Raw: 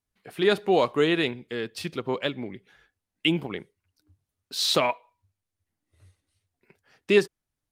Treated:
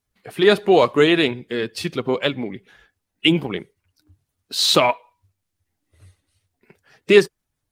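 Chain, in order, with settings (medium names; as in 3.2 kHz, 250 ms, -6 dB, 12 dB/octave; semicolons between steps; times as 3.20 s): coarse spectral quantiser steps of 15 dB; trim +7.5 dB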